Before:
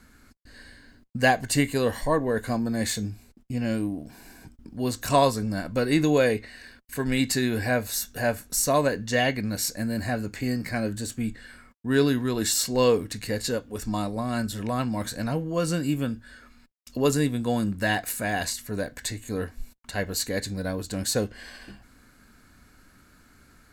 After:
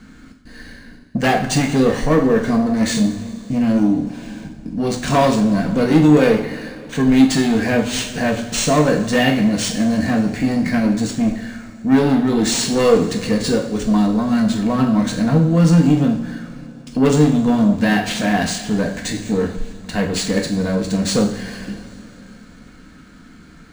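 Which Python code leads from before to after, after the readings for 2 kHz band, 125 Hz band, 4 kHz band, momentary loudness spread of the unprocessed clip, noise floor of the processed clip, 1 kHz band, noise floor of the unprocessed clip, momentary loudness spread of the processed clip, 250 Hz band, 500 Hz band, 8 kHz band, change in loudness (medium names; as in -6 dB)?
+5.5 dB, +10.0 dB, +7.0 dB, 12 LU, -43 dBFS, +6.5 dB, -57 dBFS, 14 LU, +12.5 dB, +7.0 dB, +4.0 dB, +9.5 dB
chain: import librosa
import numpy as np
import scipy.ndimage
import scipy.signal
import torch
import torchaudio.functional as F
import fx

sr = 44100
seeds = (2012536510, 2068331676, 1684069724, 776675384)

y = fx.peak_eq(x, sr, hz=200.0, db=10.5, octaves=0.96)
y = 10.0 ** (-18.5 / 20.0) * np.tanh(y / 10.0 ** (-18.5 / 20.0))
y = fx.rev_double_slope(y, sr, seeds[0], early_s=0.54, late_s=3.5, knee_db=-17, drr_db=1.0)
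y = np.interp(np.arange(len(y)), np.arange(len(y))[::3], y[::3])
y = y * 10.0 ** (7.0 / 20.0)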